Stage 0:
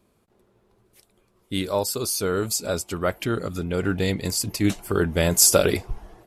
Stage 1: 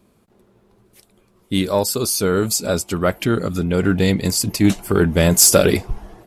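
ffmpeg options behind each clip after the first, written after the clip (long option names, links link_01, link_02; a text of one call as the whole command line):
ffmpeg -i in.wav -filter_complex "[0:a]equalizer=frequency=200:width=1.4:gain=4.5,asplit=2[link_01][link_02];[link_02]acontrast=83,volume=1dB[link_03];[link_01][link_03]amix=inputs=2:normalize=0,volume=-5.5dB" out.wav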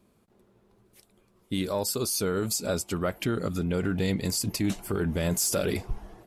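ffmpeg -i in.wav -af "alimiter=limit=-11.5dB:level=0:latency=1:release=65,volume=-7dB" out.wav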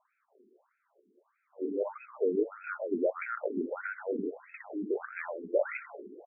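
ffmpeg -i in.wav -af "aecho=1:1:129|258|387|516|645:0.355|0.16|0.0718|0.0323|0.0145,afftfilt=real='re*between(b*sr/1024,300*pow(1900/300,0.5+0.5*sin(2*PI*1.6*pts/sr))/1.41,300*pow(1900/300,0.5+0.5*sin(2*PI*1.6*pts/sr))*1.41)':imag='im*between(b*sr/1024,300*pow(1900/300,0.5+0.5*sin(2*PI*1.6*pts/sr))/1.41,300*pow(1900/300,0.5+0.5*sin(2*PI*1.6*pts/sr))*1.41)':win_size=1024:overlap=0.75,volume=2.5dB" out.wav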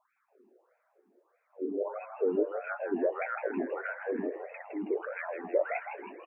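ffmpeg -i in.wav -filter_complex "[0:a]asplit=6[link_01][link_02][link_03][link_04][link_05][link_06];[link_02]adelay=161,afreqshift=130,volume=-9dB[link_07];[link_03]adelay=322,afreqshift=260,volume=-15.9dB[link_08];[link_04]adelay=483,afreqshift=390,volume=-22.9dB[link_09];[link_05]adelay=644,afreqshift=520,volume=-29.8dB[link_10];[link_06]adelay=805,afreqshift=650,volume=-36.7dB[link_11];[link_01][link_07][link_08][link_09][link_10][link_11]amix=inputs=6:normalize=0" out.wav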